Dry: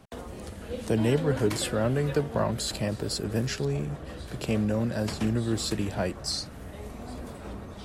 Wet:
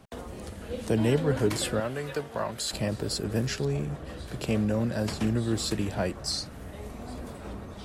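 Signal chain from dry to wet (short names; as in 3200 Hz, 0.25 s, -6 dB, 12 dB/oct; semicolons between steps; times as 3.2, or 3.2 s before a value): 1.8–2.73 low shelf 410 Hz -12 dB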